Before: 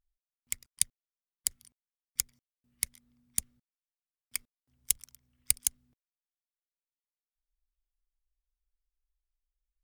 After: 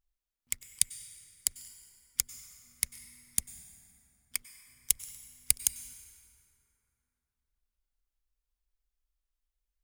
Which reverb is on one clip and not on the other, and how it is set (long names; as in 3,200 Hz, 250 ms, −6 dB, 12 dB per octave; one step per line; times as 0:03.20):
dense smooth reverb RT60 3.3 s, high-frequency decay 0.5×, pre-delay 85 ms, DRR 12.5 dB
level +1 dB